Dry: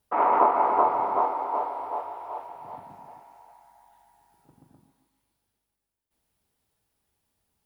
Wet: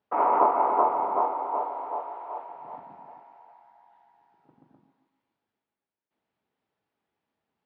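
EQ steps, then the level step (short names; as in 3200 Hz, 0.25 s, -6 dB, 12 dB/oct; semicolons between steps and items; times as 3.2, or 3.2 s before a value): BPF 190–2800 Hz; dynamic EQ 1800 Hz, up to -5 dB, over -42 dBFS, Q 1.9; air absorption 81 m; 0.0 dB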